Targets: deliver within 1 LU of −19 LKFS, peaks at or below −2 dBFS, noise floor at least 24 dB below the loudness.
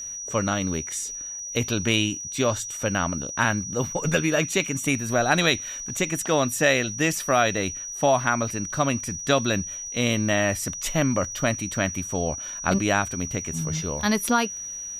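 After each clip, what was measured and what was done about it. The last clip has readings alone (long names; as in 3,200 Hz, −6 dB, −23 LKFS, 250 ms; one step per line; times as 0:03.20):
crackle rate 42 per second; interfering tone 5,800 Hz; level of the tone −32 dBFS; integrated loudness −24.5 LKFS; sample peak −7.0 dBFS; target loudness −19.0 LKFS
→ click removal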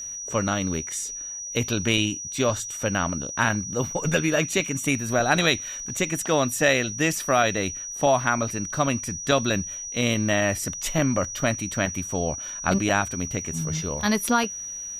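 crackle rate 0.067 per second; interfering tone 5,800 Hz; level of the tone −32 dBFS
→ notch filter 5,800 Hz, Q 30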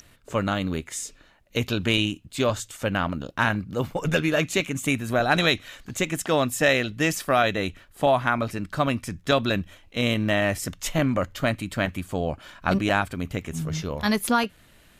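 interfering tone none found; integrated loudness −25.0 LKFS; sample peak −7.0 dBFS; target loudness −19.0 LKFS
→ level +6 dB
brickwall limiter −2 dBFS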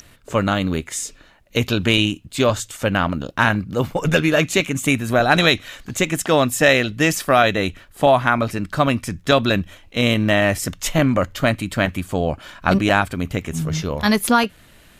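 integrated loudness −19.0 LKFS; sample peak −2.0 dBFS; background noise floor −50 dBFS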